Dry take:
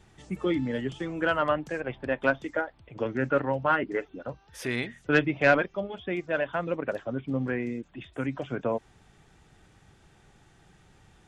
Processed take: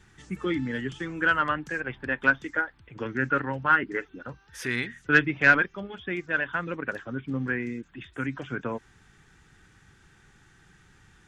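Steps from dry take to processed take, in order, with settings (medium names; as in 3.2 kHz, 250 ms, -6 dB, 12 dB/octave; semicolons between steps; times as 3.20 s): fifteen-band graphic EQ 630 Hz -11 dB, 1.6 kHz +8 dB, 6.3 kHz +3 dB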